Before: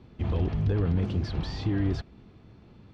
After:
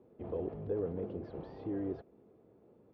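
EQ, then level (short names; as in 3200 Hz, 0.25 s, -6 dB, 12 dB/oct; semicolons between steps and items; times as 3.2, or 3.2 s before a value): band-pass 480 Hz, Q 2.5; air absorption 85 m; +1.0 dB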